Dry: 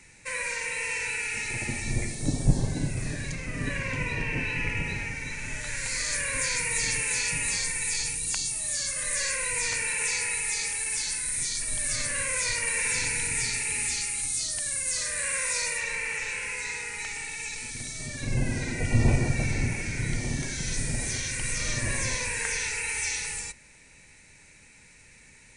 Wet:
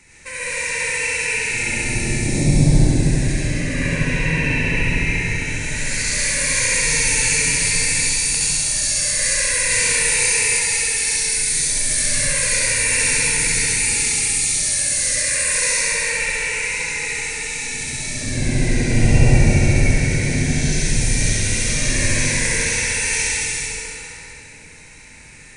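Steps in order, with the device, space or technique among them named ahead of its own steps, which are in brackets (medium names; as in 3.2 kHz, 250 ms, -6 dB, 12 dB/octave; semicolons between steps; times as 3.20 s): tunnel (flutter echo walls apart 11.6 m, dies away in 1 s; reverberation RT60 3.0 s, pre-delay 74 ms, DRR -6.5 dB); dynamic bell 1.2 kHz, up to -7 dB, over -41 dBFS, Q 1.5; 9.67–10.59 s: doubling 30 ms -3.5 dB; trim +2 dB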